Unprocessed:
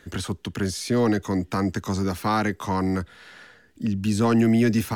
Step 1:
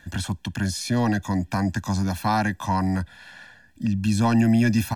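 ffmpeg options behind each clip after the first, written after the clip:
-af "aecho=1:1:1.2:0.89,volume=-1.5dB"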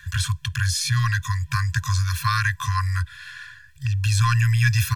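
-af "afftfilt=real='re*(1-between(b*sr/4096,140,1000))':imag='im*(1-between(b*sr/4096,140,1000))':win_size=4096:overlap=0.75,volume=6dB"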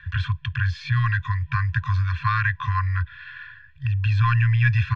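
-af "lowpass=f=3k:w=0.5412,lowpass=f=3k:w=1.3066"

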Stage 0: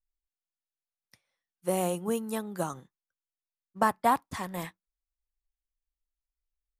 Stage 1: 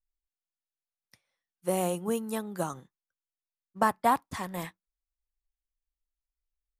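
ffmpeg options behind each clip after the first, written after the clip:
-af anull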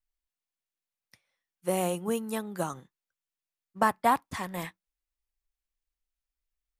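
-af "equalizer=f=2.3k:w=1.2:g=3"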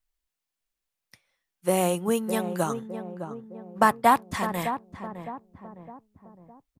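-filter_complex "[0:a]asplit=2[a][b];[b]adelay=610,lowpass=f=920:p=1,volume=-8dB,asplit=2[c][d];[d]adelay=610,lowpass=f=920:p=1,volume=0.52,asplit=2[e][f];[f]adelay=610,lowpass=f=920:p=1,volume=0.52,asplit=2[g][h];[h]adelay=610,lowpass=f=920:p=1,volume=0.52,asplit=2[i][j];[j]adelay=610,lowpass=f=920:p=1,volume=0.52,asplit=2[k][l];[l]adelay=610,lowpass=f=920:p=1,volume=0.52[m];[a][c][e][g][i][k][m]amix=inputs=7:normalize=0,volume=5dB"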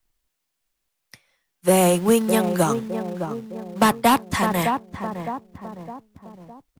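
-filter_complex "[0:a]acrossover=split=250|450|2900[a][b][c][d];[a]acrusher=bits=3:mode=log:mix=0:aa=0.000001[e];[c]asoftclip=type=tanh:threshold=-24dB[f];[e][b][f][d]amix=inputs=4:normalize=0,volume=8dB"

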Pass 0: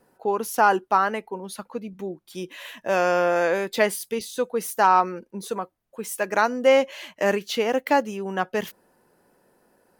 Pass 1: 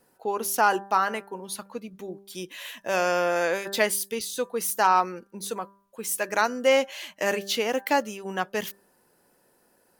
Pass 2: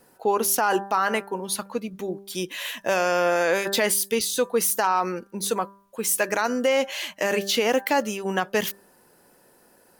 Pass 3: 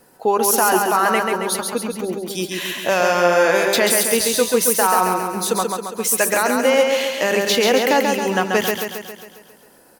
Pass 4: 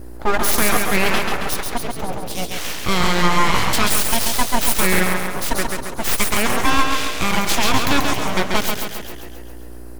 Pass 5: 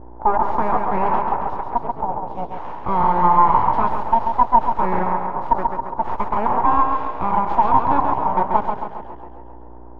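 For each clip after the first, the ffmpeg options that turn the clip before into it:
-af "highshelf=f=2.6k:g=9,bandreject=f=197.5:t=h:w=4,bandreject=f=395:t=h:w=4,bandreject=f=592.5:t=h:w=4,bandreject=f=790:t=h:w=4,bandreject=f=987.5:t=h:w=4,bandreject=f=1.185k:t=h:w=4,bandreject=f=1.3825k:t=h:w=4,bandreject=f=1.58k:t=h:w=4,bandreject=f=1.7775k:t=h:w=4,volume=-4dB"
-af "alimiter=limit=-19dB:level=0:latency=1:release=57,volume=7dB"
-af "aecho=1:1:136|272|408|544|680|816|952|1088:0.631|0.36|0.205|0.117|0.0666|0.038|0.0216|0.0123,volume=4.5dB"
-af "aeval=exprs='val(0)+0.0224*(sin(2*PI*60*n/s)+sin(2*PI*2*60*n/s)/2+sin(2*PI*3*60*n/s)/3+sin(2*PI*4*60*n/s)/4+sin(2*PI*5*60*n/s)/5)':c=same,aeval=exprs='abs(val(0))':c=same,volume=2dB"
-af "lowpass=f=920:t=q:w=7.4,volume=-5dB"

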